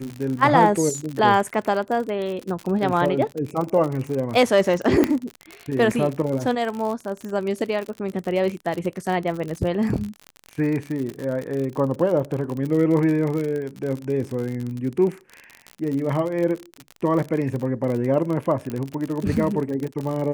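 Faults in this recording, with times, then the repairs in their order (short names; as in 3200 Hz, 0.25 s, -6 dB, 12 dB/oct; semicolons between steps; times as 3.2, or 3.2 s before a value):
crackle 55/s -26 dBFS
5.04 pop -6 dBFS
18.7 pop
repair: de-click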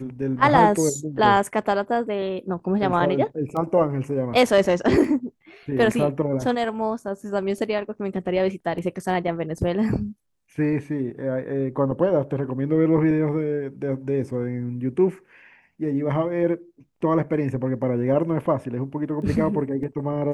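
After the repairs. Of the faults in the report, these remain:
5.04 pop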